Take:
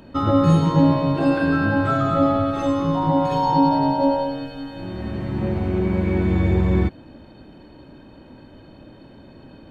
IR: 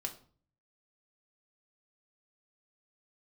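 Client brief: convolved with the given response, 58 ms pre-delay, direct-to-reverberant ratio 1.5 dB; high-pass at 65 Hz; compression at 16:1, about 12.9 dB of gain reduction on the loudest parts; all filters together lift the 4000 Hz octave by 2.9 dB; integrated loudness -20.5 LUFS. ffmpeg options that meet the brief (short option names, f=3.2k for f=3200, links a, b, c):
-filter_complex "[0:a]highpass=65,equalizer=f=4k:t=o:g=3.5,acompressor=threshold=-24dB:ratio=16,asplit=2[a][b];[1:a]atrim=start_sample=2205,adelay=58[c];[b][c]afir=irnorm=-1:irlink=0,volume=-1dB[d];[a][d]amix=inputs=2:normalize=0,volume=5dB"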